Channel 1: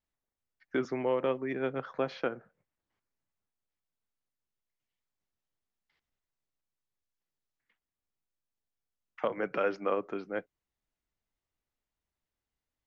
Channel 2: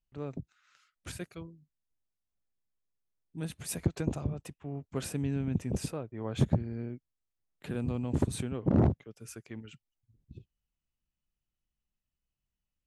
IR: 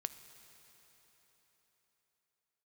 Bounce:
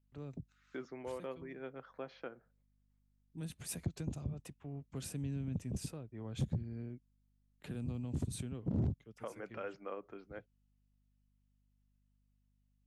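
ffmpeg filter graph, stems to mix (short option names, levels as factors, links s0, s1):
-filter_complex "[0:a]volume=0.211,asplit=2[s0][s1];[1:a]acrossover=split=270|3000[s2][s3][s4];[s3]acompressor=threshold=0.00447:ratio=3[s5];[s2][s5][s4]amix=inputs=3:normalize=0,aeval=exprs='val(0)+0.000355*(sin(2*PI*50*n/s)+sin(2*PI*2*50*n/s)/2+sin(2*PI*3*50*n/s)/3+sin(2*PI*4*50*n/s)/4+sin(2*PI*5*50*n/s)/5)':c=same,asoftclip=type=tanh:threshold=0.0841,volume=0.562[s6];[s1]apad=whole_len=567303[s7];[s6][s7]sidechaincompress=threshold=0.00398:ratio=8:attack=16:release=227[s8];[s0][s8]amix=inputs=2:normalize=0"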